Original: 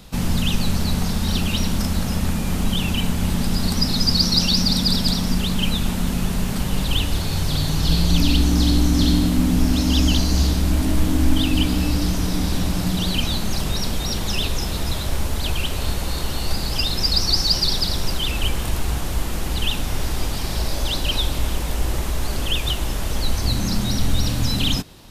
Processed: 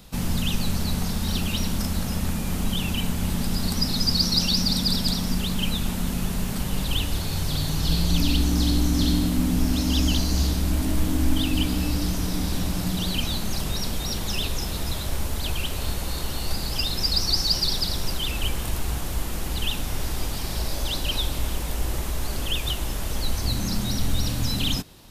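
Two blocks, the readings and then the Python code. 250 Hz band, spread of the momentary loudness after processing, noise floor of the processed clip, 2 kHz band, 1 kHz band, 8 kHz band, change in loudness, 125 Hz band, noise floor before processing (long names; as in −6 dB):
−4.5 dB, 8 LU, −29 dBFS, −4.5 dB, −4.5 dB, −2.5 dB, −4.0 dB, −4.5 dB, −25 dBFS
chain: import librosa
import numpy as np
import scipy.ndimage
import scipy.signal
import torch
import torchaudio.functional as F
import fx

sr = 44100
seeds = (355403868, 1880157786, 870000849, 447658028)

y = fx.high_shelf(x, sr, hz=9800.0, db=6.0)
y = y * librosa.db_to_amplitude(-4.5)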